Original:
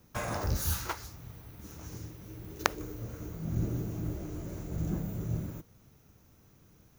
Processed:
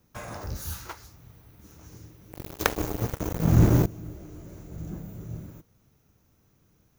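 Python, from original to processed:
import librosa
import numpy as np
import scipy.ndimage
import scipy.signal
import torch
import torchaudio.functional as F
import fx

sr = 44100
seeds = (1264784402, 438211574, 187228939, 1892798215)

y = fx.leveller(x, sr, passes=5, at=(2.32, 3.86))
y = y * 10.0 ** (-4.0 / 20.0)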